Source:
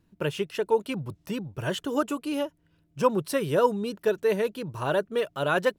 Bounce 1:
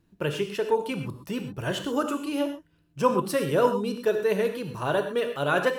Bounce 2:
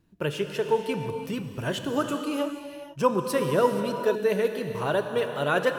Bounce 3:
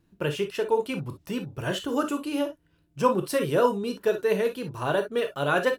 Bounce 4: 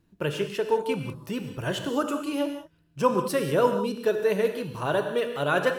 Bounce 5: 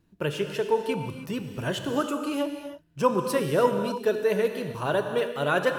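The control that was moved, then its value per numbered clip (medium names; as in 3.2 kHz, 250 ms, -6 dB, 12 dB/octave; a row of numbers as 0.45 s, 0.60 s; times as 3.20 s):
gated-style reverb, gate: 150 ms, 510 ms, 80 ms, 220 ms, 340 ms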